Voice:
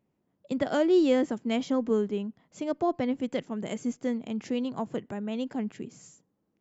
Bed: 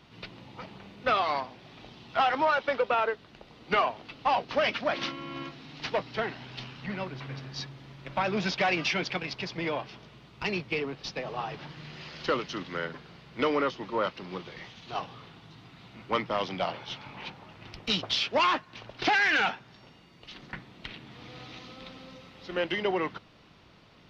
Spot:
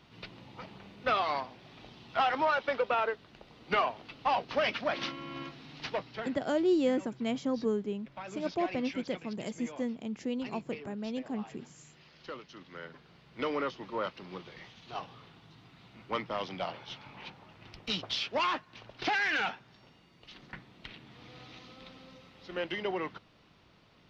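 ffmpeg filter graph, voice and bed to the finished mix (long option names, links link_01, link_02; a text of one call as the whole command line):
ffmpeg -i stem1.wav -i stem2.wav -filter_complex "[0:a]adelay=5750,volume=-4.5dB[link_01];[1:a]volume=6.5dB,afade=type=out:start_time=5.75:duration=0.73:silence=0.251189,afade=type=in:start_time=12.53:duration=1.1:silence=0.334965[link_02];[link_01][link_02]amix=inputs=2:normalize=0" out.wav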